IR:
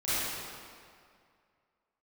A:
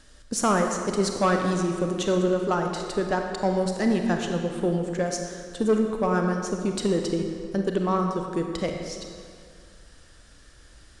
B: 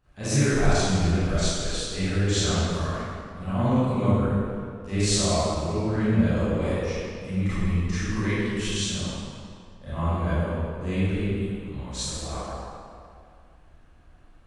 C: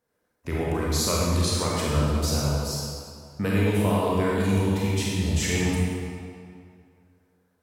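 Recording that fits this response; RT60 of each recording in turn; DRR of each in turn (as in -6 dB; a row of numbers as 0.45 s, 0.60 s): B; 2.2 s, 2.2 s, 2.2 s; 3.0 dB, -15.0 dB, -5.5 dB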